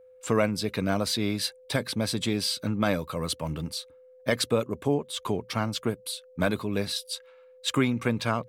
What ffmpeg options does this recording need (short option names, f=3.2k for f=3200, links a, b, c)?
-af "bandreject=f=510:w=30"